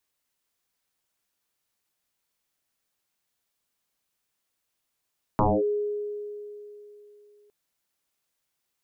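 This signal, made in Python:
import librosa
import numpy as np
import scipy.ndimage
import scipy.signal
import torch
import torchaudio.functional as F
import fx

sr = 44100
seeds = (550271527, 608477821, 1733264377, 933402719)

y = fx.fm2(sr, length_s=2.11, level_db=-17.0, carrier_hz=415.0, ratio=0.26, index=6.7, index_s=0.24, decay_s=3.19, shape='linear')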